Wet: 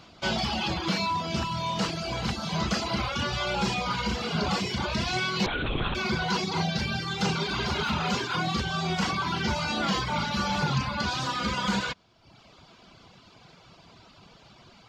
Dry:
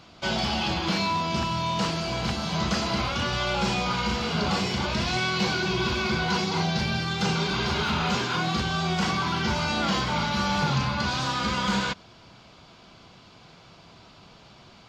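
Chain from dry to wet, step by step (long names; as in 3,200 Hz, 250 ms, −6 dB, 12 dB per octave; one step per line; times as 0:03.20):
reverb reduction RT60 0.89 s
0:05.46–0:05.95: linear-prediction vocoder at 8 kHz whisper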